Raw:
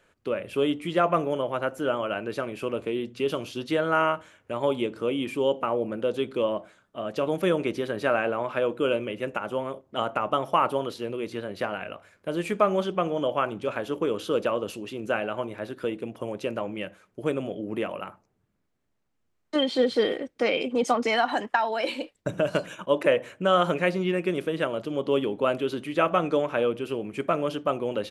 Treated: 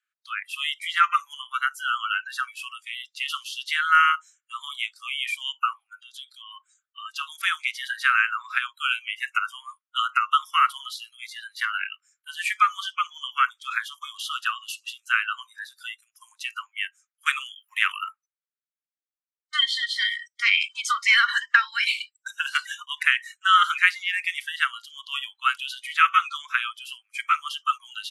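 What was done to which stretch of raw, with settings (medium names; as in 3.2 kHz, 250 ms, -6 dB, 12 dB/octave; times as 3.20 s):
5.96–6.51 s: compression 3:1, threshold -30 dBFS
17.26–17.99 s: gain +6.5 dB
whole clip: steep high-pass 1.2 kHz 72 dB/octave; spectral noise reduction 27 dB; dynamic bell 2 kHz, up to +4 dB, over -46 dBFS, Q 1.5; trim +8 dB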